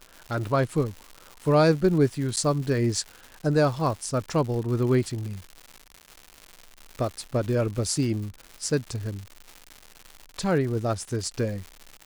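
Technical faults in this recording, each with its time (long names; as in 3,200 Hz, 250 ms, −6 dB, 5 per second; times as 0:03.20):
surface crackle 230 per second −33 dBFS
0:02.36–0:02.37: drop-out 9 ms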